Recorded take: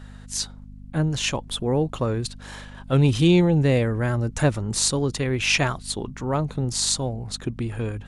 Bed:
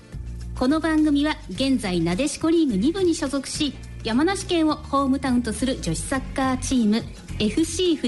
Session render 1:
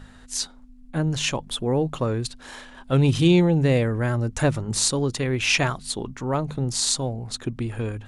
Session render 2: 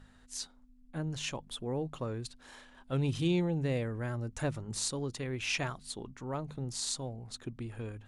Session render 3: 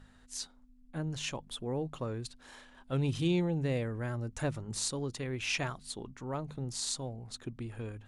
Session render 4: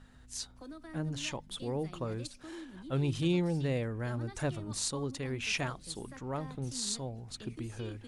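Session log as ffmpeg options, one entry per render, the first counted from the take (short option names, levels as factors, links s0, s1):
-af "bandreject=f=50:t=h:w=4,bandreject=f=100:t=h:w=4,bandreject=f=150:t=h:w=4,bandreject=f=200:t=h:w=4"
-af "volume=0.237"
-af anull
-filter_complex "[1:a]volume=0.0447[s0];[0:a][s0]amix=inputs=2:normalize=0"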